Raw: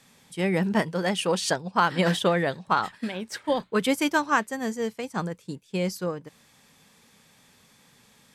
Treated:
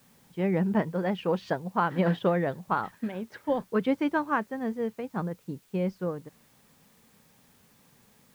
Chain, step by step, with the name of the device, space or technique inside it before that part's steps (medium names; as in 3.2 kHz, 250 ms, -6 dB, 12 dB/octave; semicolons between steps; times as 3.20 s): cassette deck with a dirty head (tape spacing loss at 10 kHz 43 dB; wow and flutter 22 cents; white noise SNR 34 dB)